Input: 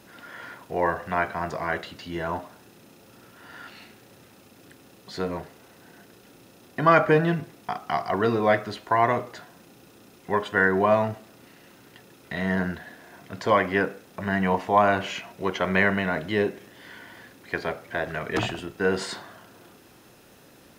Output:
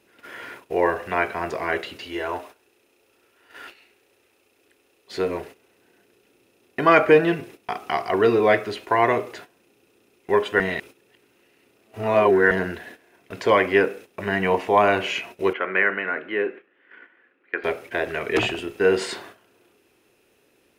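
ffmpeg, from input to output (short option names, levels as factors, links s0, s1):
-filter_complex "[0:a]asettb=1/sr,asplit=3[s0][s1][s2];[s0]atrim=end=2.064[s3];[s1]atrim=start=2.06:end=5.12,asetpts=PTS-STARTPTS,afade=t=in:d=0.004:c=qsin,afade=t=out:st=3.056:d=0.004:c=qsin,equalizer=f=160:t=o:w=1.2:g=-13.5[s4];[s2]atrim=start=5.116[s5];[s3][s4]acrossfade=d=0.004:c1=hsin:c2=qsin[s6];[s6][s5]acrossfade=d=0.004:c1=qsin:c2=hsin,asettb=1/sr,asplit=3[s7][s8][s9];[s7]atrim=end=15.534[s10];[s8]atrim=start=15.53:end=17.64,asetpts=PTS-STARTPTS,afade=t=in:d=0.004:c=qsin,afade=t=out:st=2.106:d=0.004:c=qsin,highpass=360,equalizer=f=410:t=q:w=4:g=-6,equalizer=f=650:t=q:w=4:g=-8,equalizer=f=930:t=q:w=4:g=-7,equalizer=f=1400:t=q:w=4:g=4,equalizer=f=2200:t=q:w=4:g=-3,lowpass=f=2300:w=0.5412,lowpass=f=2300:w=1.3066[s11];[s9]atrim=start=17.636[s12];[s10][s11]acrossfade=d=0.004:c1=hsin:c2=qsin[s13];[s13][s12]acrossfade=d=0.004:c1=qsin:c2=hsin,asplit=3[s14][s15][s16];[s14]atrim=end=10.602[s17];[s15]atrim=start=10.598:end=12.512,asetpts=PTS-STARTPTS,areverse[s18];[s16]atrim=start=12.508[s19];[s17][s18]acrossfade=d=0.004:c1=hsin:c2=hsin[s20];[s20][s19]acrossfade=d=0.004:c1=hsin:c2=hsin,agate=range=0.224:threshold=0.00631:ratio=16:detection=peak,equalizer=f=160:t=o:w=0.67:g=-6,equalizer=f=400:t=o:w=0.67:g=9,equalizer=f=2500:t=o:w=0.67:g=9,equalizer=f=10000:t=o:w=0.67:g=4"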